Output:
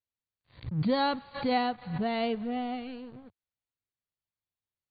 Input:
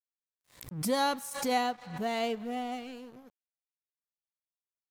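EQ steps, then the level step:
linear-phase brick-wall low-pass 4,700 Hz
parametric band 99 Hz +9 dB 1.1 octaves
low-shelf EQ 180 Hz +8.5 dB
0.0 dB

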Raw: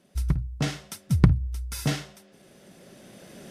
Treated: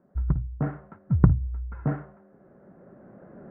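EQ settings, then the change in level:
Butterworth low-pass 1,500 Hz 36 dB per octave
0.0 dB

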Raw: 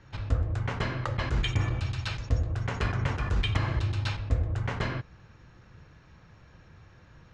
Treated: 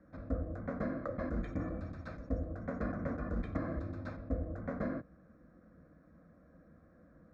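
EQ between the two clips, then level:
resonant band-pass 430 Hz, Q 0.77
low-shelf EQ 460 Hz +10.5 dB
phaser with its sweep stopped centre 590 Hz, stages 8
−2.5 dB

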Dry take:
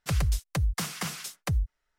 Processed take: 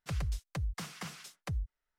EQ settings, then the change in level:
high-shelf EQ 8,400 Hz −9.5 dB
−8.5 dB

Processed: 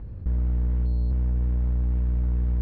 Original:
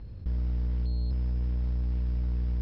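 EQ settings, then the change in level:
low-pass filter 1,800 Hz 12 dB per octave
+5.0 dB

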